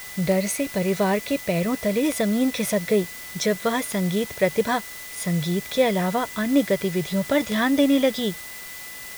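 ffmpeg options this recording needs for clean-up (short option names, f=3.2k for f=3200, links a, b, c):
-af "adeclick=t=4,bandreject=f=2k:w=30,afwtdn=0.011"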